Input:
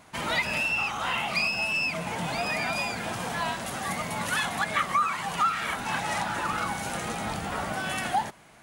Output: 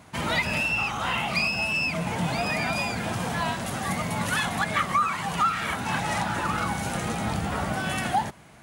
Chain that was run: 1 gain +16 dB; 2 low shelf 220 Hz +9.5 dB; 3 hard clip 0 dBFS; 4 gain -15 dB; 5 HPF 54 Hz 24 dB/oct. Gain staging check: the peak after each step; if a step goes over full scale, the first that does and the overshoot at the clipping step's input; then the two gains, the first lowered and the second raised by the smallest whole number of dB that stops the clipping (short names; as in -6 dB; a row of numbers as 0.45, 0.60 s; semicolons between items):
+3.5, +3.5, 0.0, -15.0, -14.0 dBFS; step 1, 3.5 dB; step 1 +12 dB, step 4 -11 dB